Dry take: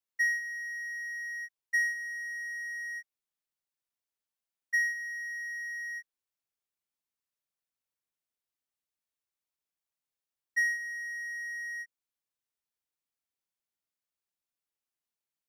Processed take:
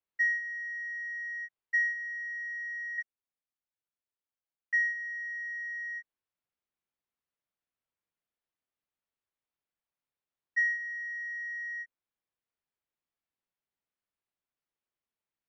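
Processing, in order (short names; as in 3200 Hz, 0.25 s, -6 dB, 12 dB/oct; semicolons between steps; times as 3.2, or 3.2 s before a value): 2.98–4.74 sample leveller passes 3; air absorption 290 m; gain +3 dB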